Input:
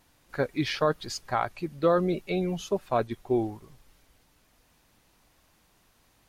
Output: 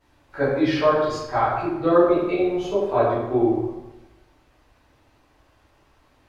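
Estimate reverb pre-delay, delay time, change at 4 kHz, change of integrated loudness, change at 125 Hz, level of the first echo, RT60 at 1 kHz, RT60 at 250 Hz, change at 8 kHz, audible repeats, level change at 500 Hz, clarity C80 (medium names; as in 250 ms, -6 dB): 7 ms, no echo, +0.5 dB, +7.5 dB, +3.0 dB, no echo, 1.0 s, 1.0 s, no reading, no echo, +8.0 dB, 3.5 dB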